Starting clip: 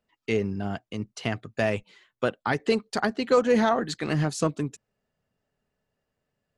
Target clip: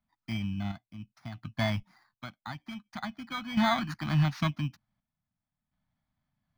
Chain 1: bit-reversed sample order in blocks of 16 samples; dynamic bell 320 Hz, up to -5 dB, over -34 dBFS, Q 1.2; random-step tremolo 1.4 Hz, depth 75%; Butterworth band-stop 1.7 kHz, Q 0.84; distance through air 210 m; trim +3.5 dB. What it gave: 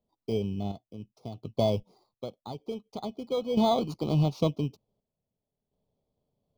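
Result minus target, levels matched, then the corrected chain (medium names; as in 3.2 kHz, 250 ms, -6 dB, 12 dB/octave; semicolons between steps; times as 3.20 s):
2 kHz band -18.5 dB
bit-reversed sample order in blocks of 16 samples; dynamic bell 320 Hz, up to -5 dB, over -34 dBFS, Q 1.2; random-step tremolo 1.4 Hz, depth 75%; Butterworth band-stop 450 Hz, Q 0.84; distance through air 210 m; trim +3.5 dB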